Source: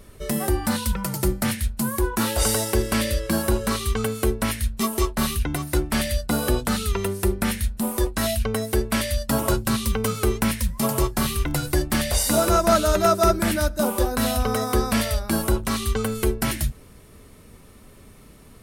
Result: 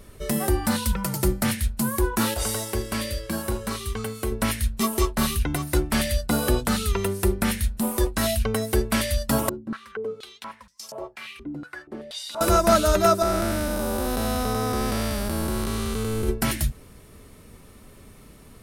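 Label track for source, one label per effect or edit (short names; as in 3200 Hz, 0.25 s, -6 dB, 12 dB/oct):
2.340000	4.320000	resonator 100 Hz, decay 0.29 s
9.490000	12.410000	stepped band-pass 4.2 Hz 270–5600 Hz
13.220000	16.290000	time blur width 0.373 s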